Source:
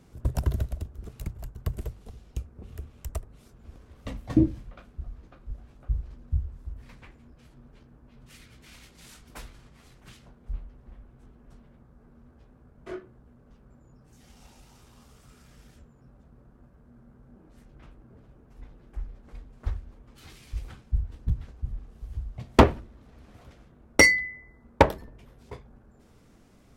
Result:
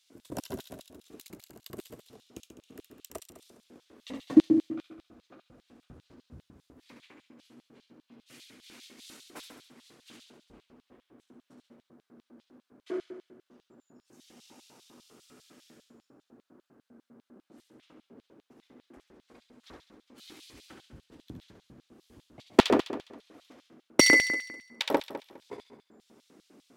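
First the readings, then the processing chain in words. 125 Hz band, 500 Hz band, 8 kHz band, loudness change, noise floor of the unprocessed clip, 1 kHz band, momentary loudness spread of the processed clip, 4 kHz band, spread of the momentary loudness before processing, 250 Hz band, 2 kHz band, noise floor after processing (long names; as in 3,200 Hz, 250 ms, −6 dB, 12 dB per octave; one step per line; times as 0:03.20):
−16.5 dB, −2.0 dB, +1.0 dB, +2.0 dB, −57 dBFS, −5.5 dB, 23 LU, +3.0 dB, 24 LU, +1.5 dB, −2.0 dB, −80 dBFS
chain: flutter between parallel walls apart 11.7 metres, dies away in 0.91 s
auto-filter high-pass square 5 Hz 290–3,600 Hz
level −3 dB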